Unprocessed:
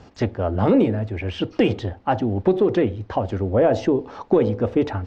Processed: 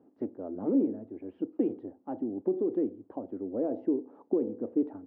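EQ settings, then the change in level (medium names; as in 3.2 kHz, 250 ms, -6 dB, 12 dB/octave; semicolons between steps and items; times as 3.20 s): ladder band-pass 330 Hz, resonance 55%; -2.5 dB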